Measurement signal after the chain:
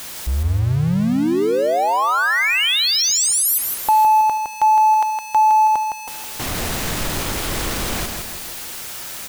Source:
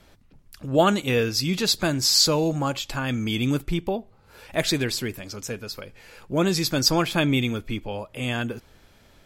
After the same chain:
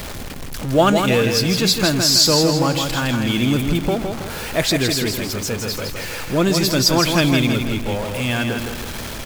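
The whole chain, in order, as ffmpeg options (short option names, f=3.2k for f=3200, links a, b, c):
-filter_complex "[0:a]aeval=exprs='val(0)+0.5*0.0398*sgn(val(0))':c=same,asplit=2[a][b];[b]aecho=0:1:162|324|486|648|810:0.531|0.234|0.103|0.0452|0.0199[c];[a][c]amix=inputs=2:normalize=0,volume=3dB"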